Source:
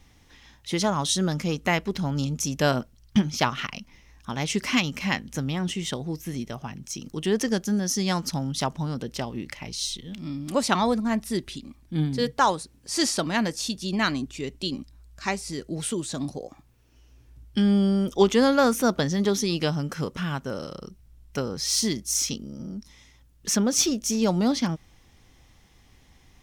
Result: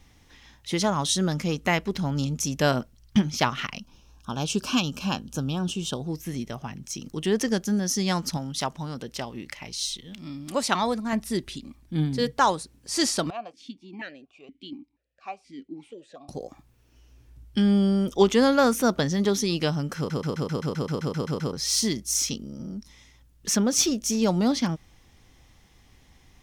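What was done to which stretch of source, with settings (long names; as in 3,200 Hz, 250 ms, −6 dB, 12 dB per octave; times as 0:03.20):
0:03.79–0:06.09: Butterworth band-reject 2,000 Hz, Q 2
0:08.37–0:11.13: low-shelf EQ 420 Hz −6 dB
0:13.30–0:16.29: formant filter that steps through the vowels 4.2 Hz
0:19.97: stutter in place 0.13 s, 12 plays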